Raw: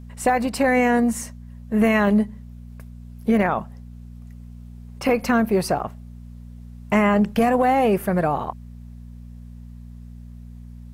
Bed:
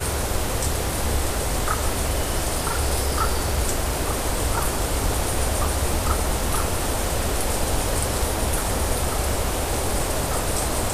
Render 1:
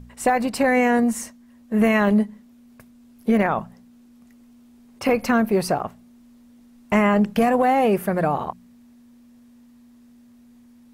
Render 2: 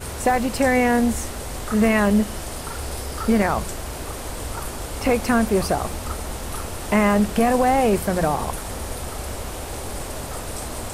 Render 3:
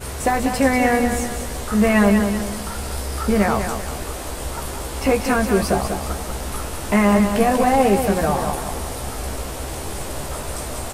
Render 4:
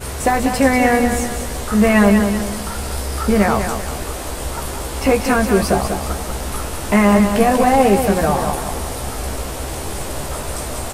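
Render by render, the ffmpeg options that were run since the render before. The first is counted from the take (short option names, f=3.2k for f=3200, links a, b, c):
-af "bandreject=f=60:t=h:w=4,bandreject=f=120:t=h:w=4,bandreject=f=180:t=h:w=4"
-filter_complex "[1:a]volume=-7dB[a];[0:a][a]amix=inputs=2:normalize=0"
-filter_complex "[0:a]asplit=2[a][b];[b]adelay=15,volume=-5.5dB[c];[a][c]amix=inputs=2:normalize=0,asplit=2[d][e];[e]aecho=0:1:192|384|576|768|960:0.447|0.179|0.0715|0.0286|0.0114[f];[d][f]amix=inputs=2:normalize=0"
-af "volume=3dB"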